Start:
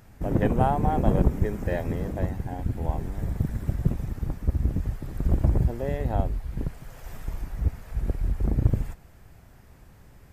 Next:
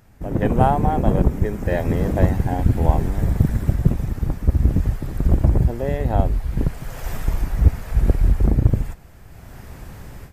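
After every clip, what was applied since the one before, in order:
automatic gain control gain up to 15.5 dB
level −1 dB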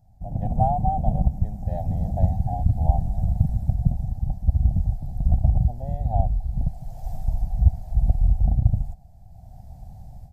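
drawn EQ curve 100 Hz 0 dB, 190 Hz −4 dB, 410 Hz −27 dB, 750 Hz +3 dB, 1,100 Hz −28 dB, 1,600 Hz −28 dB, 2,800 Hz −25 dB, 4,100 Hz −14 dB
level −2.5 dB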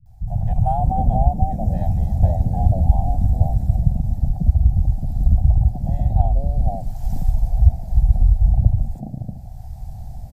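in parallel at +1.5 dB: downward compressor, threshold −26 dBFS, peak gain reduction 15.5 dB
on the sum: three-band delay without the direct sound lows, highs, mids 60/550 ms, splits 160/700 Hz
level +2.5 dB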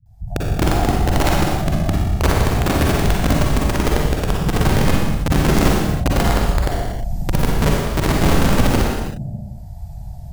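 notch comb filter 260 Hz
wrap-around overflow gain 10.5 dB
convolution reverb, pre-delay 40 ms, DRR −3 dB
level −2 dB

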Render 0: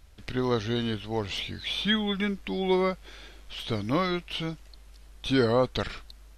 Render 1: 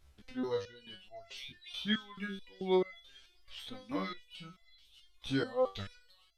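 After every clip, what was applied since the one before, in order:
reverb reduction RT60 2 s
delay with a high-pass on its return 625 ms, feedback 68%, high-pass 3,700 Hz, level −10 dB
step-sequenced resonator 4.6 Hz 70–680 Hz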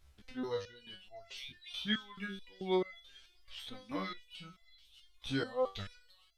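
parametric band 310 Hz −3 dB 2.7 octaves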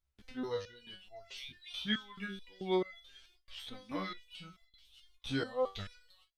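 noise gate with hold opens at −53 dBFS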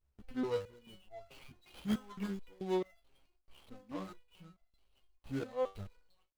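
running median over 25 samples
speech leveller within 5 dB 0.5 s
level +2 dB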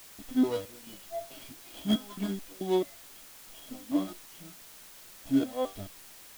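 high-shelf EQ 3,800 Hz +8.5 dB
hollow resonant body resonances 290/640/3,300 Hz, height 17 dB, ringing for 45 ms
background noise white −51 dBFS

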